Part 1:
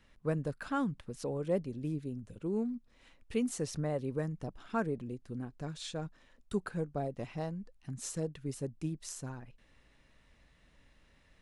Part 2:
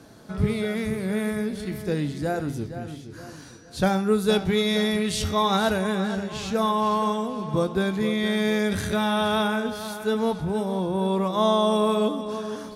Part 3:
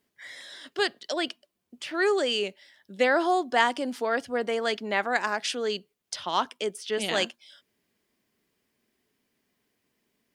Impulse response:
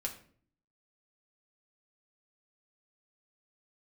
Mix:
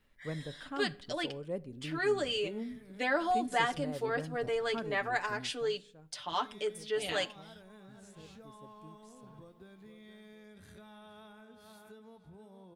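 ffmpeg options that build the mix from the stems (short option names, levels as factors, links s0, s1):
-filter_complex "[0:a]volume=0.376,afade=t=out:st=5.35:d=0.47:silence=0.251189,asplit=2[s0][s1];[s1]volume=0.266[s2];[1:a]acompressor=threshold=0.0282:ratio=10,adelay=1850,volume=0.106,asplit=3[s3][s4][s5];[s3]atrim=end=5.09,asetpts=PTS-STARTPTS,afade=t=out:st=5.086:d=0.004:c=hsin[s6];[s4]atrim=start=5.09:end=6.29,asetpts=PTS-STARTPTS,volume=0[s7];[s5]atrim=start=6.29,asetpts=PTS-STARTPTS,afade=t=in:d=0.004:c=hsin[s8];[s6][s7][s8]concat=n=3:v=0:a=1[s9];[2:a]aecho=1:1:6.8:0.95,volume=0.266,asplit=3[s10][s11][s12];[s11]volume=0.316[s13];[s12]apad=whole_len=644149[s14];[s9][s14]sidechaincompress=threshold=0.0158:ratio=8:attack=16:release=104[s15];[3:a]atrim=start_sample=2205[s16];[s2][s13]amix=inputs=2:normalize=0[s17];[s17][s16]afir=irnorm=-1:irlink=0[s18];[s0][s15][s10][s18]amix=inputs=4:normalize=0,equalizer=f=5900:t=o:w=0.44:g=-4"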